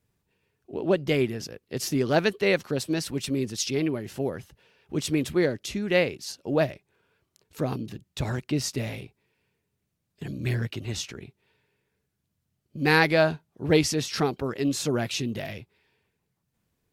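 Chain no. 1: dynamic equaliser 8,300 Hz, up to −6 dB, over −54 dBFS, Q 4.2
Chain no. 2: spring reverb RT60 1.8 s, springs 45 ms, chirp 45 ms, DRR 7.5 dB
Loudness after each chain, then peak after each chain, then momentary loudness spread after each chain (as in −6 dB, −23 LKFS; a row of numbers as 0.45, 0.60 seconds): −27.0, −26.5 LKFS; −5.0, −4.5 dBFS; 14, 16 LU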